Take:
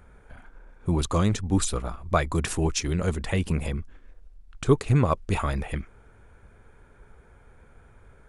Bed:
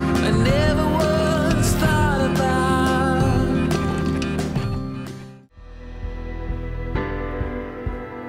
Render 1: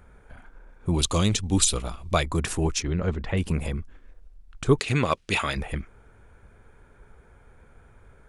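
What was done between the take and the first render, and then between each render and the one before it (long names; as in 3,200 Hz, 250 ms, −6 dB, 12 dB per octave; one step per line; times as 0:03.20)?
0:00.94–0:02.23: high shelf with overshoot 2,200 Hz +7.5 dB, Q 1.5
0:02.82–0:03.37: high-frequency loss of the air 190 metres
0:04.79–0:05.57: meter weighting curve D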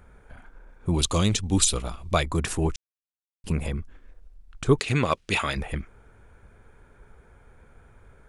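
0:02.76–0:03.44: silence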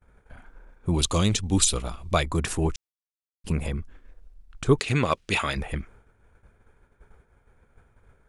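downward expander −45 dBFS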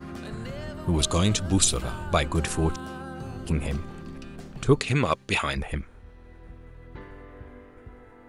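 mix in bed −18.5 dB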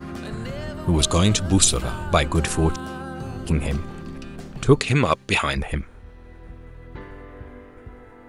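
level +4.5 dB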